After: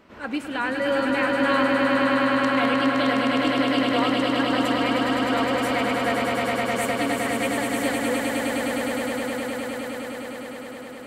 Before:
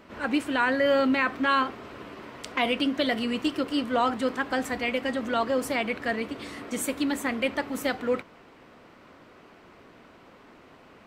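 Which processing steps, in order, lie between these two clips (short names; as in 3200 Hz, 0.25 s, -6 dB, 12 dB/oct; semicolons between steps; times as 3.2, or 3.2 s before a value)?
swelling echo 0.103 s, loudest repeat 8, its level -5 dB; gain -2.5 dB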